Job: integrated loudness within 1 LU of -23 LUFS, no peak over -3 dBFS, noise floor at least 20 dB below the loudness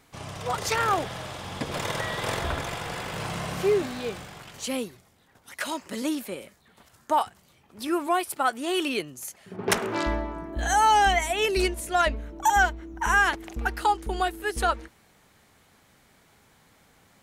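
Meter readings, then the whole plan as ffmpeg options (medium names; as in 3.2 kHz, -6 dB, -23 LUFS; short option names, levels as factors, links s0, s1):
loudness -26.5 LUFS; peak level -7.5 dBFS; loudness target -23.0 LUFS
-> -af "volume=1.5"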